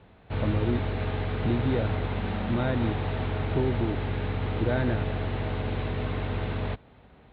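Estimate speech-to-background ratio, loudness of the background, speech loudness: 0.0 dB, -31.0 LUFS, -31.0 LUFS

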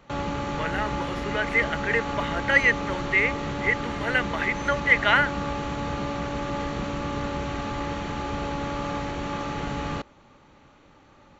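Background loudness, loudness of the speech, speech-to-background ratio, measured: -30.5 LUFS, -24.0 LUFS, 6.5 dB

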